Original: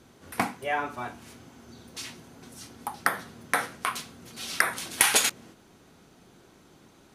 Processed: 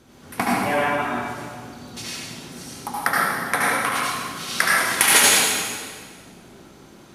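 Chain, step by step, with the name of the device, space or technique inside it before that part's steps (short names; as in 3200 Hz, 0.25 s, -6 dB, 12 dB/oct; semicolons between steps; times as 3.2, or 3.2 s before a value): stairwell (reverb RT60 1.8 s, pre-delay 68 ms, DRR -6 dB); gain +2 dB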